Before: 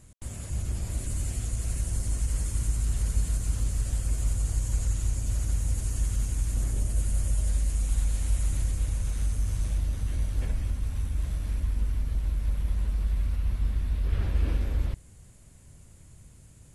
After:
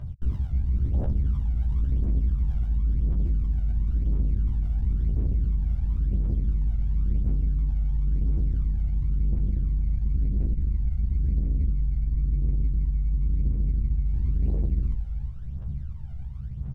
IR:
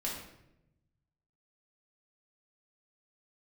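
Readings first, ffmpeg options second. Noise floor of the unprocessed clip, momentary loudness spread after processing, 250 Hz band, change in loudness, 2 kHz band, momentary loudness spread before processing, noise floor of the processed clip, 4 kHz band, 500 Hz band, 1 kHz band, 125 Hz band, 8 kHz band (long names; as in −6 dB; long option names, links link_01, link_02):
−52 dBFS, 4 LU, +6.5 dB, +2.5 dB, below −10 dB, 3 LU, −34 dBFS, below −15 dB, −0.5 dB, can't be measured, +3.5 dB, below −35 dB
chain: -filter_complex "[0:a]acrossover=split=250[link_01][link_02];[link_01]alimiter=level_in=0.5dB:limit=-24dB:level=0:latency=1:release=10,volume=-0.5dB[link_03];[link_03][link_02]amix=inputs=2:normalize=0,aecho=1:1:347:0.133,areverse,acompressor=threshold=-36dB:ratio=8,areverse,acrusher=samples=20:mix=1:aa=0.000001,aphaser=in_gain=1:out_gain=1:delay=1.5:decay=0.68:speed=0.96:type=triangular,afwtdn=0.0158,acontrast=22,asoftclip=type=tanh:threshold=-27dB,highshelf=frequency=6200:gain=-11,asplit=2[link_04][link_05];[link_05]adelay=15,volume=-3.5dB[link_06];[link_04][link_06]amix=inputs=2:normalize=0,volume=5dB"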